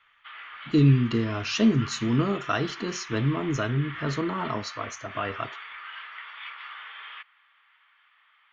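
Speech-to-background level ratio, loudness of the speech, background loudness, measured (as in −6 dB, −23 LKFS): 13.5 dB, −26.0 LKFS, −39.5 LKFS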